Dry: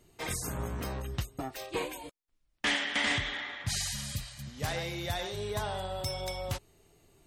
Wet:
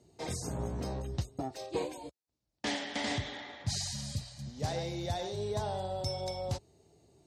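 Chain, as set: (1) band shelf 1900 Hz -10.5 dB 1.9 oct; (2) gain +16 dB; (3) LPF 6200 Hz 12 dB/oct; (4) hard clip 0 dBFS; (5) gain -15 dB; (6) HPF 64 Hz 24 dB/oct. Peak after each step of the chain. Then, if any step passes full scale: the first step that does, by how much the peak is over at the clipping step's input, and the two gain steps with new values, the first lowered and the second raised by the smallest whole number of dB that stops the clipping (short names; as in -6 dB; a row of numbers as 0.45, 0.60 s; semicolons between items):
-21.0, -5.0, -5.5, -5.5, -20.5, -21.0 dBFS; no overload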